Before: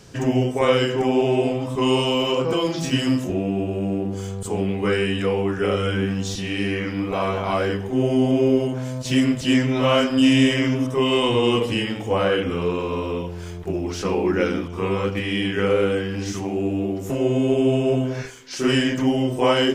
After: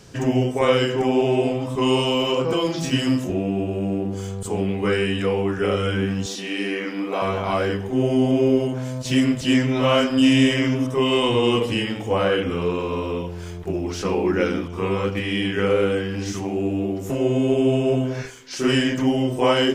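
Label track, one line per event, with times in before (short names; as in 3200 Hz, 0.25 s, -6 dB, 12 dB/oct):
6.260000	7.220000	HPF 230 Hz 24 dB/oct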